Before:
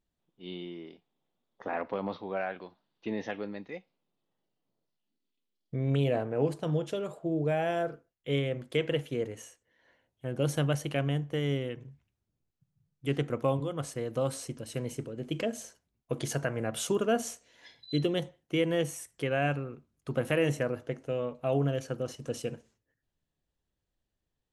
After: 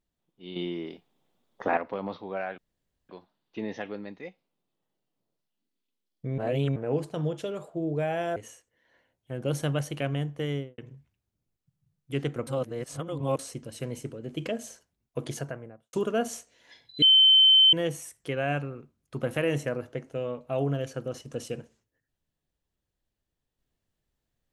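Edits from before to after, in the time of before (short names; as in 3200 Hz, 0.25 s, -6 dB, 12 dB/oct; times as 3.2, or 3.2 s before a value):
0.56–1.77 gain +8.5 dB
2.58 insert room tone 0.51 s
5.87–6.25 reverse
7.85–9.3 cut
11.43–11.72 studio fade out
13.41–14.33 reverse
16.12–16.87 studio fade out
17.96–18.67 bleep 3080 Hz -14 dBFS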